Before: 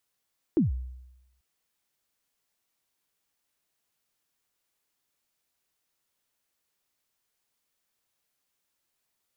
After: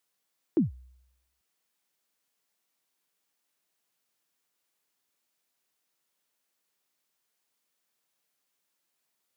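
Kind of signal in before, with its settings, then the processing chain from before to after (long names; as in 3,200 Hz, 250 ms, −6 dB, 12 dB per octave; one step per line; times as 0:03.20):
synth kick length 0.84 s, from 370 Hz, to 63 Hz, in 142 ms, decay 0.94 s, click off, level −17 dB
high-pass filter 150 Hz 12 dB per octave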